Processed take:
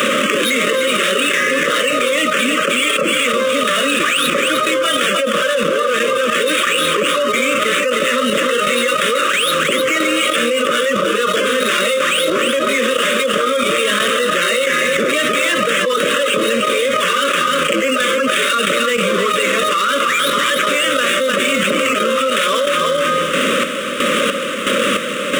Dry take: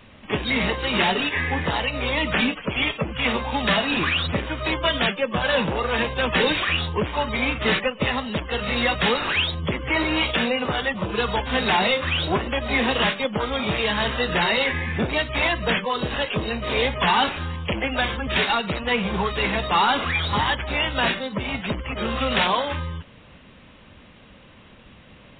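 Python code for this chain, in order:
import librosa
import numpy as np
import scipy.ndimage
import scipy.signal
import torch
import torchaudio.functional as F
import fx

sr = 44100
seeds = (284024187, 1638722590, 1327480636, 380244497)

y = scipy.signal.medfilt(x, 9)
y = scipy.signal.sosfilt(scipy.signal.butter(4, 230.0, 'highpass', fs=sr, output='sos'), y)
y = fx.high_shelf(y, sr, hz=3400.0, db=10.5)
y = y + 10.0 ** (-10.0 / 20.0) * np.pad(y, (int(307 * sr / 1000.0), 0))[:len(y)]
y = fx.chopper(y, sr, hz=1.5, depth_pct=65, duty_pct=45)
y = scipy.signal.sosfilt(scipy.signal.cheby1(3, 1.0, [570.0, 1200.0], 'bandstop', fs=sr, output='sos'), y)
y = fx.band_shelf(y, sr, hz=820.0, db=8.0, octaves=1.7)
y = fx.env_flatten(y, sr, amount_pct=100)
y = F.gain(torch.from_numpy(y), -4.0).numpy()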